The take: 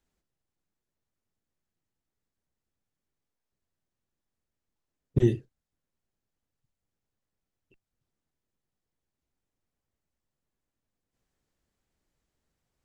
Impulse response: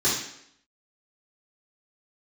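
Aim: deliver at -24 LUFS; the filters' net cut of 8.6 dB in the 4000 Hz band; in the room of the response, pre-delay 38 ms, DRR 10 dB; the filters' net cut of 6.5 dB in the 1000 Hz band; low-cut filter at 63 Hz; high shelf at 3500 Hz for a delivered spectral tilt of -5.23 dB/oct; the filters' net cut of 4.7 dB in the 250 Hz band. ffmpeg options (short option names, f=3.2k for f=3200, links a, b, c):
-filter_complex "[0:a]highpass=63,equalizer=f=250:t=o:g=-7,equalizer=f=1k:t=o:g=-8,highshelf=f=3.5k:g=-7,equalizer=f=4k:t=o:g=-6.5,asplit=2[a][b];[1:a]atrim=start_sample=2205,adelay=38[c];[b][c]afir=irnorm=-1:irlink=0,volume=-23.5dB[d];[a][d]amix=inputs=2:normalize=0,volume=5.5dB"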